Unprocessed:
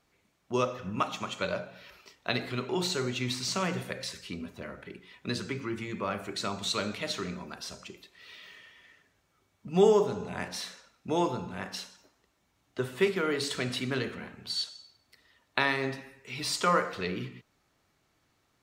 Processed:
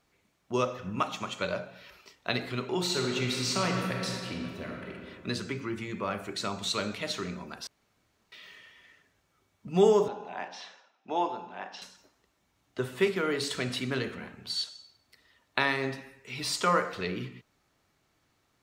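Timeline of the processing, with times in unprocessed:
2.81–4.93 reverb throw, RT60 2.5 s, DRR 0.5 dB
7.67–8.32 room tone
10.08–11.82 speaker cabinet 410–4800 Hz, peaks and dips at 480 Hz -5 dB, 790 Hz +7 dB, 1300 Hz -5 dB, 2100 Hz -6 dB, 4300 Hz -10 dB

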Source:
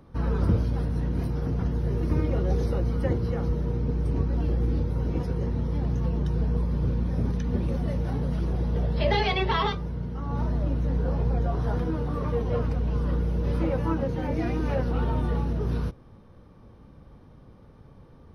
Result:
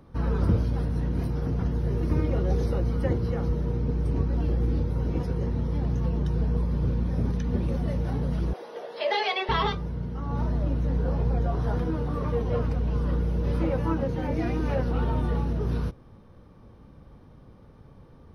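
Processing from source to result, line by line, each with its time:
8.53–9.49 HPF 430 Hz 24 dB/oct

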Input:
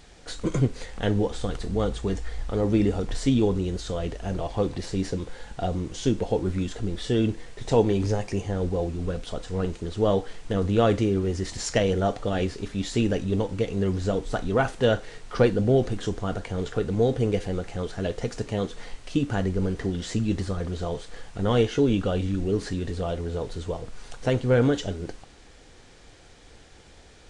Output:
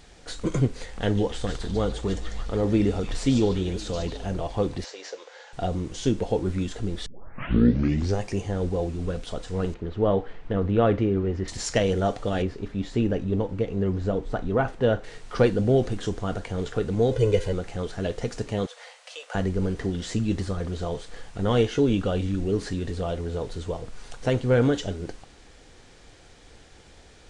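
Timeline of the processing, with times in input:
0.86–4.26 delay with a stepping band-pass 0.146 s, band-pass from 5200 Hz, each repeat -0.7 oct, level -2 dB
4.84–5.53 elliptic band-pass 520–6500 Hz, stop band 50 dB
7.06 tape start 1.14 s
9.74–11.48 LPF 2300 Hz
12.42–15.04 LPF 1500 Hz 6 dB/oct
17.11–17.53 comb 2 ms, depth 89%
18.66–19.35 Chebyshev high-pass 490 Hz, order 6

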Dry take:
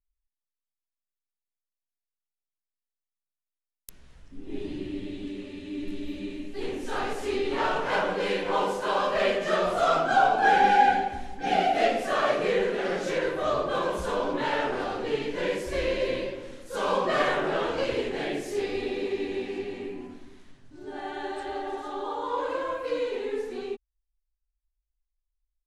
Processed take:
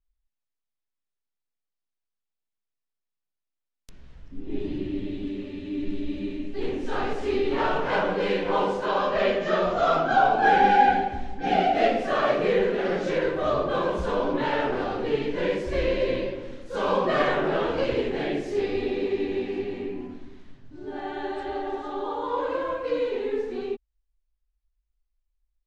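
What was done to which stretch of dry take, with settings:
8.86–10.3 Chebyshev low-pass 7500 Hz, order 10
whole clip: LPF 5000 Hz 12 dB/oct; low shelf 450 Hz +6 dB

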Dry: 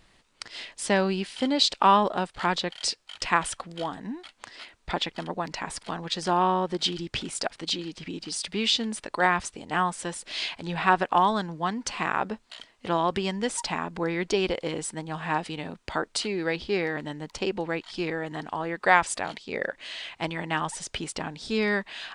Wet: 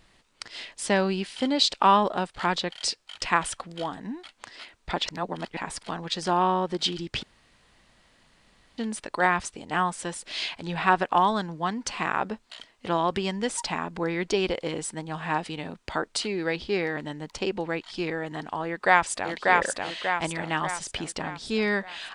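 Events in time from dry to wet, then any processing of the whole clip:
5.06–5.57 reverse
7.23–8.78 room tone
18.66–19.32 echo throw 0.59 s, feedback 50%, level -1.5 dB

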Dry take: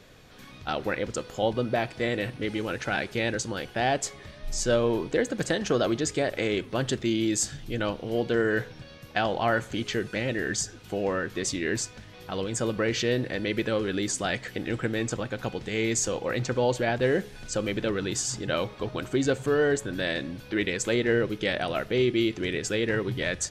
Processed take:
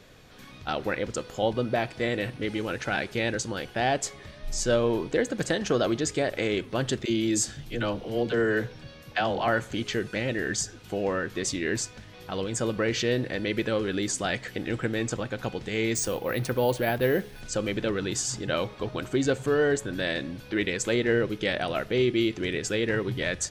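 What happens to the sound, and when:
7.05–9.48 dispersion lows, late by 53 ms, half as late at 370 Hz
15.95–17.41 careless resampling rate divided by 3×, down filtered, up hold

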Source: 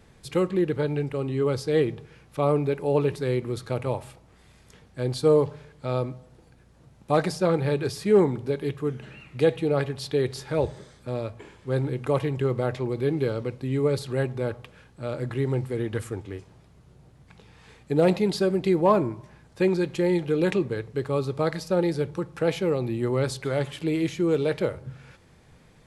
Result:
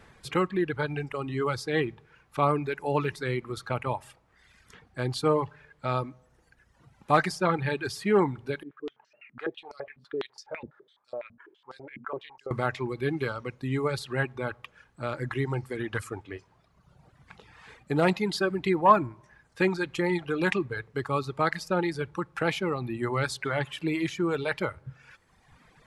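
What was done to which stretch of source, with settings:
8.63–12.51 stepped band-pass 12 Hz 240–5300 Hz
whole clip: bell 1400 Hz +9.5 dB 2.2 oct; reverb removal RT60 1.4 s; dynamic EQ 500 Hz, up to -8 dB, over -35 dBFS, Q 2.1; gain -2 dB

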